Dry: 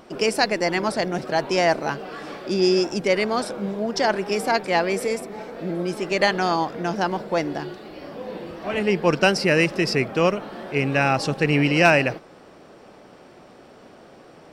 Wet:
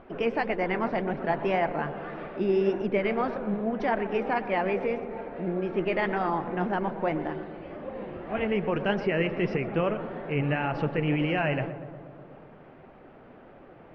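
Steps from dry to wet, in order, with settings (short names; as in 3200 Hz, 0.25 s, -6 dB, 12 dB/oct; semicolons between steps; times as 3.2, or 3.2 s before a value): LPF 2500 Hz 24 dB/oct; low shelf 86 Hz +11.5 dB; limiter -13 dBFS, peak gain reduction 9 dB; flange 1.7 Hz, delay 1.3 ms, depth 8 ms, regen +67%; on a send: darkening echo 0.126 s, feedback 75%, low-pass 1500 Hz, level -12 dB; on the sum: speed mistake 24 fps film run at 25 fps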